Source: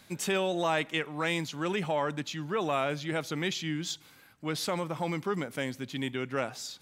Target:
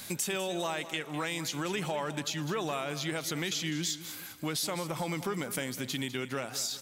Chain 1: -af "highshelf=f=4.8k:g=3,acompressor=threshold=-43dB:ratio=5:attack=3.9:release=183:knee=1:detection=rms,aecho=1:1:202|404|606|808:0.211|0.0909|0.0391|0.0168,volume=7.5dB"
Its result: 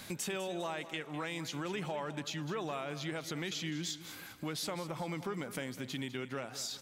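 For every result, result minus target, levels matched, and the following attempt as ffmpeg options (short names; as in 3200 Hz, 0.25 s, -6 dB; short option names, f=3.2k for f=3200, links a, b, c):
compressor: peak gain reduction +4 dB; 8000 Hz band -3.0 dB
-af "highshelf=f=4.8k:g=3,acompressor=threshold=-37dB:ratio=5:attack=3.9:release=183:knee=1:detection=rms,aecho=1:1:202|404|606|808:0.211|0.0909|0.0391|0.0168,volume=7.5dB"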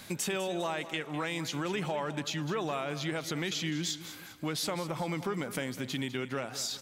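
8000 Hz band -3.0 dB
-af "highshelf=f=4.8k:g=13.5,acompressor=threshold=-37dB:ratio=5:attack=3.9:release=183:knee=1:detection=rms,aecho=1:1:202|404|606|808:0.211|0.0909|0.0391|0.0168,volume=7.5dB"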